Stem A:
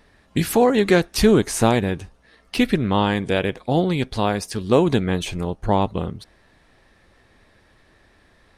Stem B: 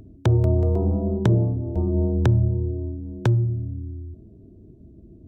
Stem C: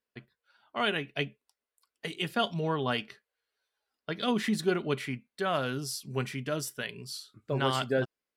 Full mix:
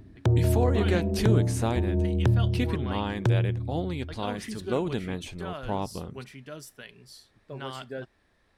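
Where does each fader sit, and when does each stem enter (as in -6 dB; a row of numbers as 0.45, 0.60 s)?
-11.5, -4.0, -9.0 dB; 0.00, 0.00, 0.00 s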